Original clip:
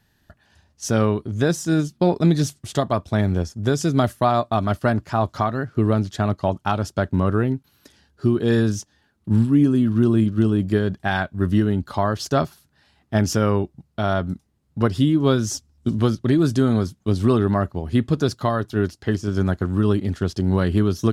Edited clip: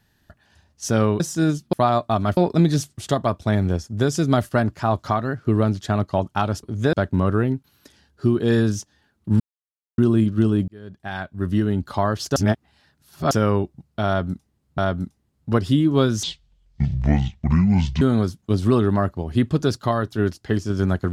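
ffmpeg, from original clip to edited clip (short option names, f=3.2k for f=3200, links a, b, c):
-filter_complex "[0:a]asplit=15[a][b][c][d][e][f][g][h][i][j][k][l][m][n][o];[a]atrim=end=1.202[p];[b]atrim=start=1.498:end=2.032[q];[c]atrim=start=4.148:end=4.792[r];[d]atrim=start=2.028:end=4.152[s];[e]atrim=start=4.788:end=6.932[t];[f]atrim=start=1.198:end=1.502[u];[g]atrim=start=6.928:end=9.4,asetpts=PTS-STARTPTS,afade=t=out:st=2.468:d=0.004:c=hsin[v];[h]atrim=start=9.4:end=9.98,asetpts=PTS-STARTPTS,volume=0[w];[i]atrim=start=9.98:end=10.68,asetpts=PTS-STARTPTS,afade=t=in:d=0.004:c=hsin,afade=t=out:st=0.696:d=0.004:c=hsin[x];[j]atrim=start=10.68:end=12.362,asetpts=PTS-STARTPTS,afade=t=in:d=1.15[y];[k]atrim=start=12.358:end=13.312,asetpts=PTS-STARTPTS,areverse[z];[l]atrim=start=13.308:end=14.782[aa];[m]atrim=start=14.068:end=15.524[ab];[n]atrim=start=15.52:end=16.59,asetpts=PTS-STARTPTS,asetrate=26460,aresample=44100[ac];[o]atrim=start=16.586[ad];[p][q]acrossfade=d=0.004:c1=hsin:c2=hsin[ae];[ae][r]acrossfade=d=0.004:c1=hsin:c2=hsin[af];[af][s]acrossfade=d=0.004:c1=hsin:c2=hsin[ag];[ag][t]acrossfade=d=0.004:c1=hsin:c2=hsin[ah];[ah][u]acrossfade=d=0.004:c1=hsin:c2=hsin[ai];[v][w][x][y]concat=n=4:v=0:a=1[aj];[ai][aj]acrossfade=d=0.004:c1=hsin:c2=hsin[ak];[ak][z]acrossfade=d=0.004:c1=hsin:c2=hsin[al];[al][aa]acrossfade=d=0.004:c1=hsin:c2=hsin[am];[am][ab]acrossfade=d=0.004:c1=hsin:c2=hsin[an];[an][ac]acrossfade=d=0.004:c1=hsin:c2=hsin[ao];[ao][ad]acrossfade=d=0.004:c1=hsin:c2=hsin"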